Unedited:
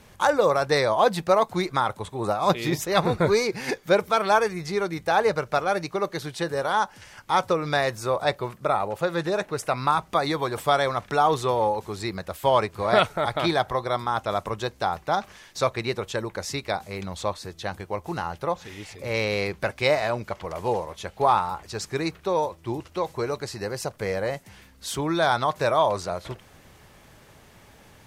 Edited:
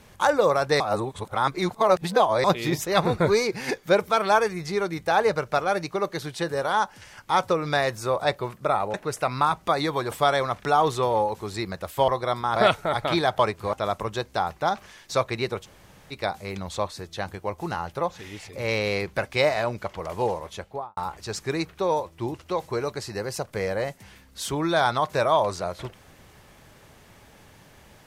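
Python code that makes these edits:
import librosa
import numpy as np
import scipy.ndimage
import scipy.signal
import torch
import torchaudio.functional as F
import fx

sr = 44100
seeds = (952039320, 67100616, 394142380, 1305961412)

y = fx.studio_fade_out(x, sr, start_s=20.94, length_s=0.49)
y = fx.edit(y, sr, fx.reverse_span(start_s=0.8, length_s=1.64),
    fx.cut(start_s=8.94, length_s=0.46),
    fx.swap(start_s=12.54, length_s=0.34, other_s=13.71, other_length_s=0.48),
    fx.room_tone_fill(start_s=16.1, length_s=0.48, crossfade_s=0.04), tone=tone)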